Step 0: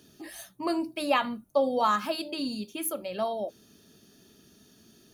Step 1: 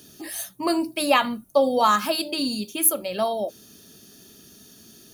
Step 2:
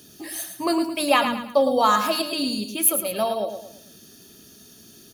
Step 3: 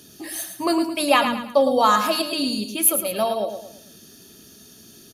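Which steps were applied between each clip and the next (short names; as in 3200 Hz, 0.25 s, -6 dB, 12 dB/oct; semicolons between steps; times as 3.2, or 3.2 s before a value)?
high shelf 5400 Hz +10 dB; gain +5.5 dB
feedback echo 0.11 s, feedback 38%, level -8 dB
downsampling 32000 Hz; gain +1.5 dB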